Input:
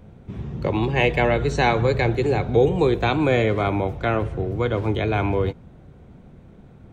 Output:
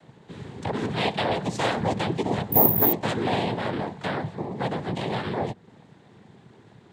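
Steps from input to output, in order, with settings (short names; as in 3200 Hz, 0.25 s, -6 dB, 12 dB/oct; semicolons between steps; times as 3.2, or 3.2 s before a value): noise vocoder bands 6; 2.52–2.93 careless resampling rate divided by 3×, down none, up zero stuff; mismatched tape noise reduction encoder only; gain -5.5 dB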